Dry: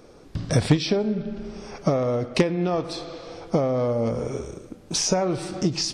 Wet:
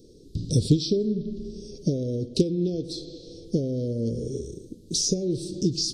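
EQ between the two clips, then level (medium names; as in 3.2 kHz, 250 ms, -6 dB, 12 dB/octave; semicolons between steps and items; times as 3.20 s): elliptic band-stop 420–3900 Hz, stop band 50 dB; 0.0 dB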